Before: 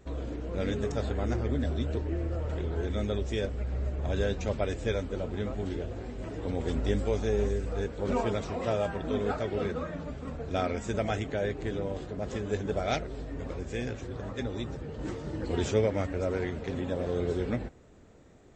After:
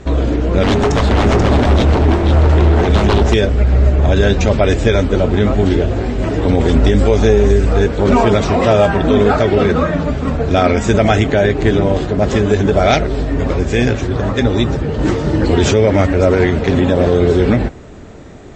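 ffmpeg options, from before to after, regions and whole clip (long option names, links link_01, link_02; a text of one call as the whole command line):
ffmpeg -i in.wav -filter_complex "[0:a]asettb=1/sr,asplit=3[link_01][link_02][link_03];[link_01]atrim=end=0.634[link_04];[link_02]atrim=start=0.63:end=3.34,asetpts=PTS-STARTPTS,afade=type=in:duration=0.004:curve=qsin,afade=type=out:start_time=2.706:duration=0.004:curve=qsin,aeval=exprs='0.0398*(abs(mod(val(0)/0.0398+3,4)-2)-1)':channel_layout=same,aecho=1:1:485:0.562,atrim=end_sample=119511[link_05];[link_03]atrim=start=3.336[link_06];[link_04][link_05]acrossfade=duration=0.004:curve1=hsin:curve2=qsin[link_07];[link_07][link_06]acrossfade=duration=0.004:curve1=qsin:curve2=hsin,lowpass=6900,bandreject=frequency=500:width=14,alimiter=level_in=22dB:limit=-1dB:release=50:level=0:latency=1,volume=-1dB" out.wav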